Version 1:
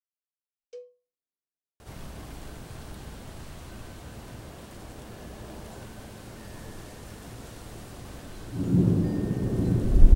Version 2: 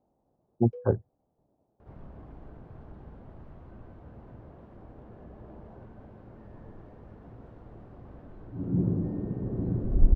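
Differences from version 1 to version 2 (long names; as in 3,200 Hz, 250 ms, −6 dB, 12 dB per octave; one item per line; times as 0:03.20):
speech: unmuted
second sound −5.0 dB
master: add low-pass filter 1,000 Hz 12 dB per octave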